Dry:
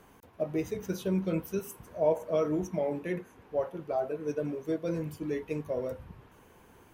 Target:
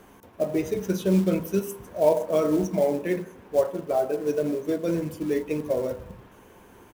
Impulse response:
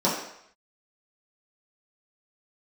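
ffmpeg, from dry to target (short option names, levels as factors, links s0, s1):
-filter_complex "[0:a]asplit=2[s0][s1];[s1]adelay=145.8,volume=0.0398,highshelf=f=4000:g=-3.28[s2];[s0][s2]amix=inputs=2:normalize=0,asplit=2[s3][s4];[1:a]atrim=start_sample=2205,highshelf=f=2200:g=-5[s5];[s4][s5]afir=irnorm=-1:irlink=0,volume=0.0596[s6];[s3][s6]amix=inputs=2:normalize=0,acrusher=bits=6:mode=log:mix=0:aa=0.000001,volume=1.78"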